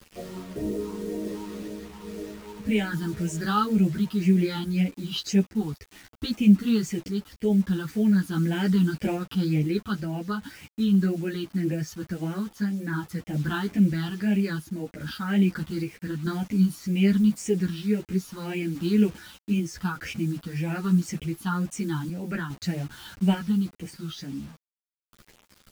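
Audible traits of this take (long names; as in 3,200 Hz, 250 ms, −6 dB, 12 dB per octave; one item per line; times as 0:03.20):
phaser sweep stages 6, 1.9 Hz, lowest notch 570–1,200 Hz
a quantiser's noise floor 8 bits, dither none
sample-and-hold tremolo 2.4 Hz
a shimmering, thickened sound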